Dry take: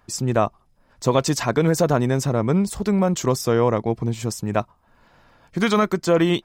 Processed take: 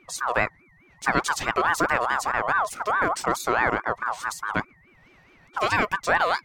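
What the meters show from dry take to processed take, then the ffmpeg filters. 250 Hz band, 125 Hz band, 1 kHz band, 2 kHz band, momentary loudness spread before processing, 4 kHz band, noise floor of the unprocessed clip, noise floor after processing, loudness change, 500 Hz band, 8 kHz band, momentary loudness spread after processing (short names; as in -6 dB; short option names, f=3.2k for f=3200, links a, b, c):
-13.5 dB, -16.5 dB, +3.5 dB, +8.0 dB, 7 LU, -3.5 dB, -60 dBFS, -57 dBFS, -3.5 dB, -8.5 dB, -4.5 dB, 7 LU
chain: -af "aeval=exprs='val(0)+0.00316*sin(2*PI*1000*n/s)':c=same,highpass=53,aeval=exprs='val(0)*sin(2*PI*1100*n/s+1100*0.25/4.7*sin(2*PI*4.7*n/s))':c=same,volume=-1.5dB"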